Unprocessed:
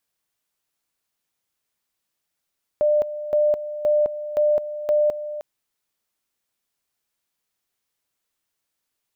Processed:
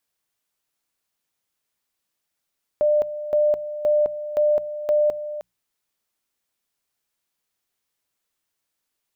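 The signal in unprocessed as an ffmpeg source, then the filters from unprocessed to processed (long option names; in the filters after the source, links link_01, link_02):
-f lavfi -i "aevalsrc='pow(10,(-15-12.5*gte(mod(t,0.52),0.21))/20)*sin(2*PI*598*t)':duration=2.6:sample_rate=44100"
-af "bandreject=frequency=60:width_type=h:width=6,bandreject=frequency=120:width_type=h:width=6,bandreject=frequency=180:width_type=h:width=6"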